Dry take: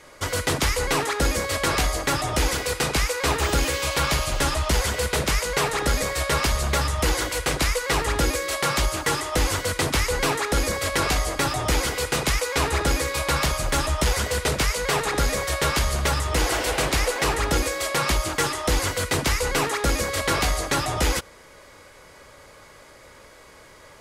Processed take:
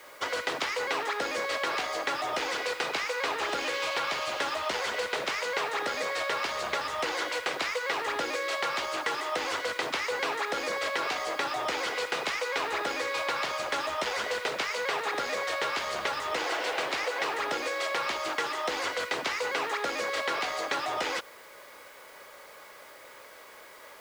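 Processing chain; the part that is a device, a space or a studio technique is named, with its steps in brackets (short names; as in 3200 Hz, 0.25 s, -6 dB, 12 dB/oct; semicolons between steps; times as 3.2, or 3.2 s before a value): baby monitor (BPF 460–4100 Hz; compressor, threshold -27 dBFS, peak gain reduction 7 dB; white noise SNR 26 dB)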